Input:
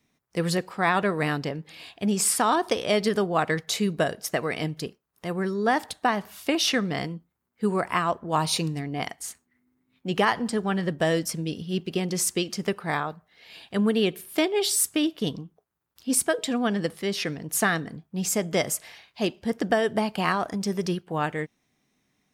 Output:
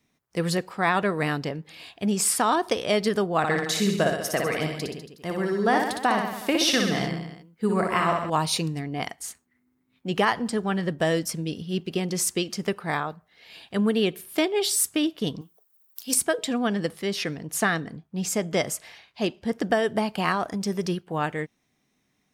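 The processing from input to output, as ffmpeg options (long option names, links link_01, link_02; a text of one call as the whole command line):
ffmpeg -i in.wav -filter_complex "[0:a]asettb=1/sr,asplit=3[link_01][link_02][link_03];[link_01]atrim=end=3.384[link_04];[link_02]atrim=start=3.38:end=8.3,asetpts=PTS-STARTPTS,afade=type=in:duration=0.004:curve=qsin,afade=type=out:start_time=4.916:duration=0.004:curve=qsin,aecho=1:1:60|126|198.6|278.5|366.3:0.631|0.398|0.251|0.158|0.1,atrim=end_sample=216972[link_05];[link_03]atrim=start=8.296[link_06];[link_04][link_05]acrossfade=duration=0.004:curve1=hsin:curve2=qsin[link_07];[link_07][link_06]acrossfade=duration=0.004:curve1=qsin:curve2=hsin,asettb=1/sr,asplit=3[link_08][link_09][link_10];[link_08]atrim=end=15.414[link_11];[link_09]atrim=start=15.41:end=16.14,asetpts=PTS-STARTPTS,afade=type=in:duration=0.004:curve=qsin,afade=type=out:start_time=0.726:duration=0.004:curve=qsin,aemphasis=mode=production:type=riaa[link_12];[link_10]atrim=start=16.136[link_13];[link_11][link_12]acrossfade=duration=0.004:curve1=hsin:curve2=qsin[link_14];[link_14][link_13]acrossfade=duration=0.004:curve1=qsin:curve2=hsin,asettb=1/sr,asplit=3[link_15][link_16][link_17];[link_15]atrim=end=17.414[link_18];[link_16]atrim=start=17.41:end=19.56,asetpts=PTS-STARTPTS,afade=type=in:duration=0.004:curve=qsin,afade=type=out:start_time=2.146:duration=0.004:curve=qsin,highshelf=frequency=11000:gain=-8[link_19];[link_17]atrim=start=19.556[link_20];[link_18][link_19]acrossfade=duration=0.004:curve1=hsin:curve2=qsin[link_21];[link_21][link_20]acrossfade=duration=0.004:curve1=qsin:curve2=hsin" out.wav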